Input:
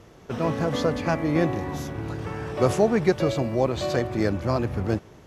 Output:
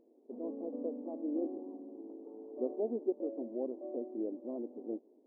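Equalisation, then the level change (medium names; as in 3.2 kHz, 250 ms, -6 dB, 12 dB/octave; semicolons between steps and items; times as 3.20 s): Gaussian low-pass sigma 17 samples; brick-wall FIR high-pass 230 Hz; -8.0 dB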